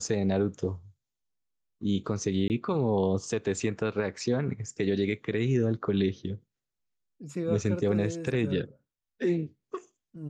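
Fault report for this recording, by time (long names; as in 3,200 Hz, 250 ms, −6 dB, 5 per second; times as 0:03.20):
0:02.48–0:02.50: drop-out 19 ms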